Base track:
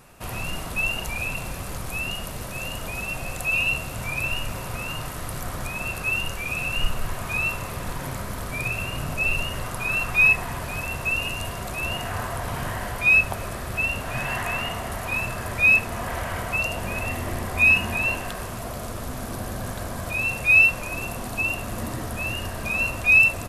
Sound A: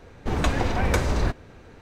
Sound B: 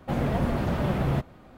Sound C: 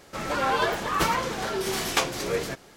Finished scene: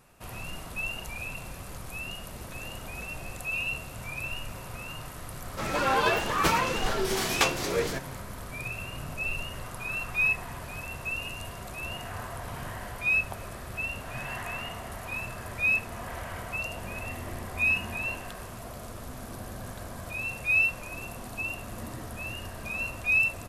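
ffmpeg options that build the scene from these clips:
ffmpeg -i bed.wav -i cue0.wav -i cue1.wav -i cue2.wav -filter_complex "[0:a]volume=-8.5dB[link_01];[1:a]acompressor=threshold=-35dB:ratio=6:attack=3.2:release=140:knee=1:detection=peak,atrim=end=1.81,asetpts=PTS-STARTPTS,volume=-9dB,afade=type=in:duration=0.004:curve=hsin,afade=type=out:start_time=1.806:duration=0.004:curve=hsin,adelay=2080[link_02];[3:a]atrim=end=2.76,asetpts=PTS-STARTPTS,volume=-0.5dB,afade=type=in:duration=0.004:curve=hsin,afade=type=out:start_time=2.756:duration=0.004:curve=hsin,adelay=5440[link_03];[link_01][link_02][link_03]amix=inputs=3:normalize=0" out.wav

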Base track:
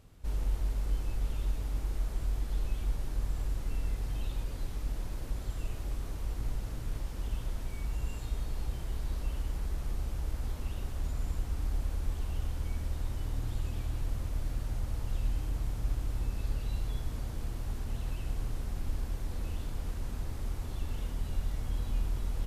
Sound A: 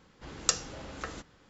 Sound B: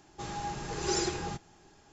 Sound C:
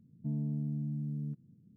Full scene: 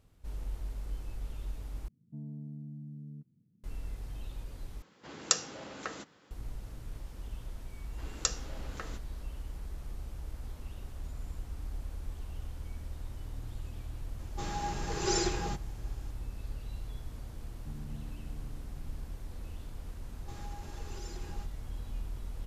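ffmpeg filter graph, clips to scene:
ffmpeg -i bed.wav -i cue0.wav -i cue1.wav -i cue2.wav -filter_complex "[3:a]asplit=2[link_01][link_02];[1:a]asplit=2[link_03][link_04];[2:a]asplit=2[link_05][link_06];[0:a]volume=-7dB[link_07];[link_03]highpass=160[link_08];[link_05]acontrast=87[link_09];[link_02]asplit=2[link_10][link_11];[link_11]adelay=379,volume=-7dB,highshelf=frequency=4000:gain=-8.53[link_12];[link_10][link_12]amix=inputs=2:normalize=0[link_13];[link_06]acompressor=threshold=-36dB:ratio=6:attack=3.2:release=140:knee=1:detection=peak[link_14];[link_07]asplit=3[link_15][link_16][link_17];[link_15]atrim=end=1.884[link_18];[link_01]atrim=end=1.76,asetpts=PTS-STARTPTS,volume=-8.5dB[link_19];[link_16]atrim=start=3.636:end=4.824[link_20];[link_08]atrim=end=1.49,asetpts=PTS-STARTPTS,volume=-0.5dB[link_21];[link_17]atrim=start=6.306[link_22];[link_04]atrim=end=1.49,asetpts=PTS-STARTPTS,volume=-4.5dB,afade=type=in:duration=0.004:curve=hsin,afade=type=out:start_time=1.486:duration=0.004:curve=hsin,adelay=7760[link_23];[link_09]atrim=end=1.92,asetpts=PTS-STARTPTS,volume=-7dB,afade=type=in:duration=0.004:curve=hsin,afade=type=out:start_time=1.916:duration=0.004:curve=hsin,adelay=14190[link_24];[link_13]atrim=end=1.76,asetpts=PTS-STARTPTS,volume=-12dB,afade=type=in:duration=0.004:curve=hsin,afade=type=out:start_time=1.756:duration=0.004:curve=hsin,adelay=17410[link_25];[link_14]atrim=end=1.92,asetpts=PTS-STARTPTS,volume=-9dB,afade=type=in:duration=0.004:curve=hsin,afade=type=out:start_time=1.916:duration=0.004:curve=hsin,adelay=20090[link_26];[link_18][link_19]acrossfade=duration=0.004:curve1=hsin:curve2=hsin[link_27];[link_27][link_20]acrossfade=duration=0.004:curve1=hsin:curve2=hsin[link_28];[link_28][link_21]acrossfade=duration=0.004:curve1=hsin:curve2=hsin[link_29];[link_29][link_22]acrossfade=duration=0.004:curve1=hsin:curve2=hsin[link_30];[link_30][link_23][link_24][link_25][link_26]amix=inputs=5:normalize=0" out.wav

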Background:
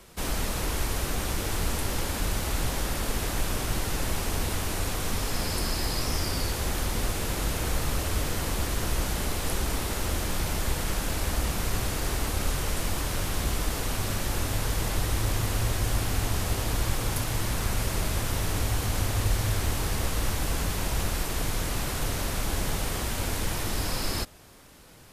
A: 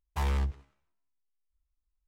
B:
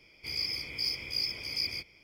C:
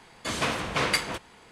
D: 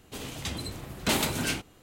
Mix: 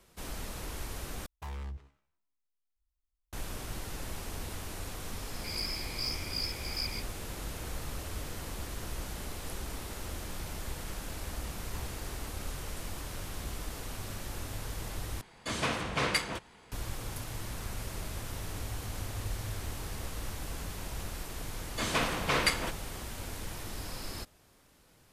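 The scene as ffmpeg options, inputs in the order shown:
ffmpeg -i bed.wav -i cue0.wav -i cue1.wav -i cue2.wav -filter_complex "[1:a]asplit=2[link_01][link_02];[3:a]asplit=2[link_03][link_04];[0:a]volume=-11dB[link_05];[link_01]alimiter=level_in=6.5dB:limit=-24dB:level=0:latency=1:release=95,volume=-6.5dB[link_06];[link_03]lowshelf=frequency=140:gain=5[link_07];[link_05]asplit=3[link_08][link_09][link_10];[link_08]atrim=end=1.264[link_11];[link_06]atrim=end=2.07,asetpts=PTS-STARTPTS,volume=-4dB[link_12];[link_09]atrim=start=3.326:end=15.214[link_13];[link_07]atrim=end=1.51,asetpts=PTS-STARTPTS,volume=-4.5dB[link_14];[link_10]atrim=start=16.716[link_15];[2:a]atrim=end=2.03,asetpts=PTS-STARTPTS,volume=-4dB,afade=type=in:duration=0.004:curve=hsin,afade=type=out:start_time=2.026:duration=0.004:curve=hsin,adelay=5200[link_16];[link_02]atrim=end=2.07,asetpts=PTS-STARTPTS,volume=-16.5dB,afade=type=in:duration=0.004:curve=hsin,afade=type=out:start_time=2.066:duration=0.004:curve=hsin,adelay=11570[link_17];[link_04]atrim=end=1.51,asetpts=PTS-STARTPTS,volume=-2.5dB,afade=type=in:duration=0.004:curve=hsin,afade=type=out:start_time=1.506:duration=0.004:curve=hsin,adelay=21530[link_18];[link_11][link_12]acrossfade=duration=0.004:curve1=hsin:curve2=hsin[link_19];[link_19][link_13]acrossfade=duration=0.004:curve1=hsin:curve2=hsin[link_20];[link_20][link_14]acrossfade=duration=0.004:curve1=hsin:curve2=hsin[link_21];[link_21][link_15]acrossfade=duration=0.004:curve1=hsin:curve2=hsin[link_22];[link_22][link_16][link_17][link_18]amix=inputs=4:normalize=0" out.wav

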